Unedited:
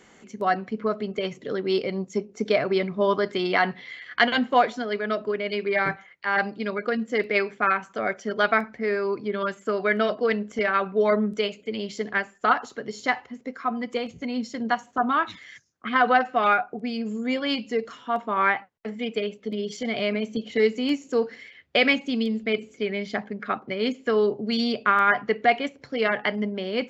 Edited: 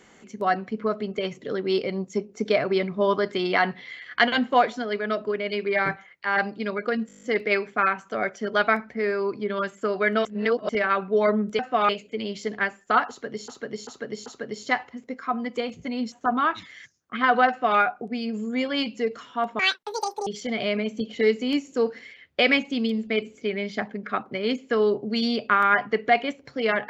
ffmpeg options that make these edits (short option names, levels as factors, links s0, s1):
-filter_complex "[0:a]asplit=19[s0][s1][s2][s3][s4][s5][s6][s7][s8][s9][s10][s11][s12][s13][s14][s15][s16][s17][s18];[s0]atrim=end=7.092[s19];[s1]atrim=start=7.068:end=7.092[s20];[s2]atrim=start=7.068:end=7.092[s21];[s3]atrim=start=7.068:end=7.092[s22];[s4]atrim=start=7.068:end=7.092[s23];[s5]atrim=start=7.068:end=7.092[s24];[s6]atrim=start=7.068:end=7.092[s25];[s7]atrim=start=7.068:end=7.092[s26];[s8]atrim=start=7.068:end=10.092[s27];[s9]atrim=start=10.088:end=10.532,asetpts=PTS-STARTPTS,areverse[s28];[s10]atrim=start=10.528:end=11.432[s29];[s11]atrim=start=16.208:end=16.512[s30];[s12]atrim=start=11.428:end=13.022[s31];[s13]atrim=start=12.628:end=13.022[s32];[s14]atrim=start=12.628:end=13.022[s33];[s15]atrim=start=12.628:end=14.492[s34];[s16]atrim=start=14.838:end=18.314[s35];[s17]atrim=start=18.31:end=19.63,asetpts=PTS-STARTPTS,asetrate=85995,aresample=44100,atrim=end_sample=29852,asetpts=PTS-STARTPTS[s36];[s18]atrim=start=19.626[s37];[s19][s20]acrossfade=d=0.004:c1=hsin:c2=hsin[s38];[s38][s21]acrossfade=d=0.004:c1=hsin:c2=hsin[s39];[s39][s22]acrossfade=d=0.004:c1=hsin:c2=hsin[s40];[s40][s23]acrossfade=d=0.004:c1=hsin:c2=hsin[s41];[s41][s24]acrossfade=d=0.004:c1=hsin:c2=hsin[s42];[s42][s25]acrossfade=d=0.004:c1=hsin:c2=hsin[s43];[s43][s26]acrossfade=d=0.004:c1=hsin:c2=hsin[s44];[s44][s27]acrossfade=d=0.004:c1=hsin:c2=hsin[s45];[s45][s28]acrossfade=d=0.004:c1=hsin:c2=hsin[s46];[s46][s29]acrossfade=d=0.004:c1=hsin:c2=hsin[s47];[s47][s30]acrossfade=d=0.004:c1=hsin:c2=hsin[s48];[s48][s31]acrossfade=d=0.004:c1=hsin:c2=hsin[s49];[s49][s32]acrossfade=d=0.004:c1=hsin:c2=hsin[s50];[s50][s33]acrossfade=d=0.004:c1=hsin:c2=hsin[s51];[s51][s34]acrossfade=d=0.004:c1=hsin:c2=hsin[s52];[s52][s35]acrossfade=d=0.004:c1=hsin:c2=hsin[s53];[s53][s36]acrossfade=d=0.004:c1=hsin:c2=hsin[s54];[s54][s37]acrossfade=d=0.004:c1=hsin:c2=hsin"